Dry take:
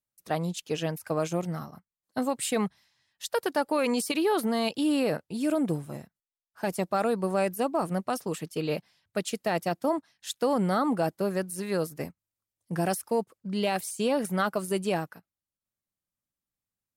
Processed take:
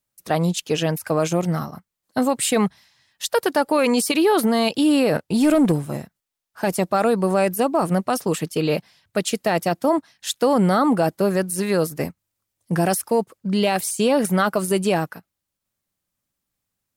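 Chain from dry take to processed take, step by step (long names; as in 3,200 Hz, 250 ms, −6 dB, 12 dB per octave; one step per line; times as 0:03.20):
in parallel at +2 dB: brickwall limiter −23.5 dBFS, peak gain reduction 8.5 dB
0:05.15–0:05.72: on the sum: leveller curve on the samples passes 1
level +3.5 dB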